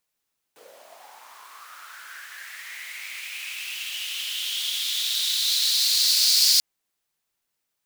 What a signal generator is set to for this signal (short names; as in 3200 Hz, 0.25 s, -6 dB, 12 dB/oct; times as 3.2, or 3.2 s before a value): swept filtered noise pink, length 6.04 s highpass, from 430 Hz, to 4700 Hz, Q 5.3, linear, gain ramp +34.5 dB